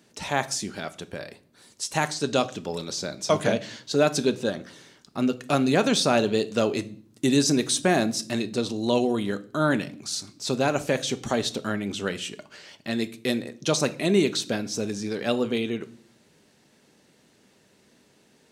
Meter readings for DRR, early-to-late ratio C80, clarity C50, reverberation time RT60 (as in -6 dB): 10.5 dB, 22.5 dB, 18.0 dB, 0.50 s